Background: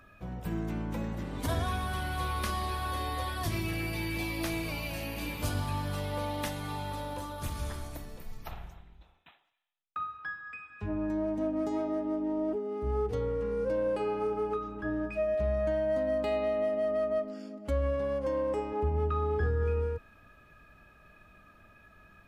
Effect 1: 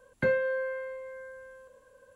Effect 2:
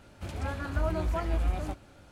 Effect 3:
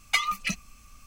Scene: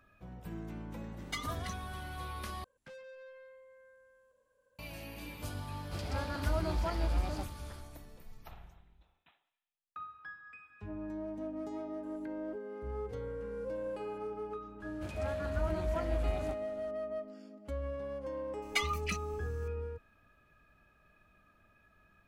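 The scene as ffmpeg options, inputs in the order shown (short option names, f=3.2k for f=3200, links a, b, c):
-filter_complex "[3:a]asplit=2[a][b];[1:a]asplit=2[c][d];[2:a]asplit=2[e][f];[0:a]volume=-9dB[g];[a]asuperstop=centerf=2500:order=4:qfactor=3.5[h];[c]asoftclip=type=tanh:threshold=-33dB[i];[e]equalizer=f=4.8k:t=o:w=0.43:g=12[j];[d]acompressor=threshold=-51dB:ratio=6:attack=3.2:release=140:knee=1:detection=peak[k];[g]asplit=2[l][m];[l]atrim=end=2.644[n];[i]atrim=end=2.15,asetpts=PTS-STARTPTS,volume=-15.5dB[o];[m]atrim=start=4.786[p];[h]atrim=end=1.06,asetpts=PTS-STARTPTS,volume=-13dB,afade=t=in:d=0.004:c=hsin,afade=t=out:st=1.056:d=0.004:c=hsin,adelay=1190[q];[j]atrim=end=2.11,asetpts=PTS-STARTPTS,volume=-3.5dB,afade=t=in:d=0.004:c=hsin,afade=t=out:st=2.106:d=0.004:c=hsin,adelay=5700[r];[k]atrim=end=2.15,asetpts=PTS-STARTPTS,volume=-3dB,afade=t=in:d=0.004:c=hsin,afade=t=out:st=2.146:d=0.004:c=hsin,adelay=12030[s];[f]atrim=end=2.11,asetpts=PTS-STARTPTS,volume=-5.5dB,afade=t=in:d=0.004:c=hsin,afade=t=out:st=2.106:d=0.004:c=hsin,adelay=14800[t];[b]atrim=end=1.06,asetpts=PTS-STARTPTS,volume=-8dB,afade=t=in:d=0.004:c=hsin,afade=t=out:st=1.056:d=0.004:c=hsin,adelay=18620[u];[n][o]acrossfade=d=0.004:c1=hsin:c2=hsin[v];[v][p]acrossfade=d=0.004:c1=hsin:c2=hsin[w];[w][q][r][s][t][u]amix=inputs=6:normalize=0"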